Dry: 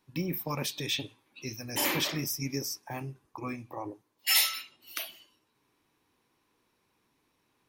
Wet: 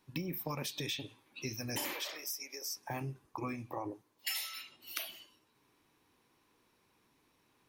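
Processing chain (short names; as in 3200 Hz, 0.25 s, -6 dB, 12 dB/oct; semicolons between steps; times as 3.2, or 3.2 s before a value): compressor 20:1, threshold -36 dBFS, peak gain reduction 17.5 dB; 1.93–2.77 Chebyshev high-pass 490 Hz, order 3; gain +1.5 dB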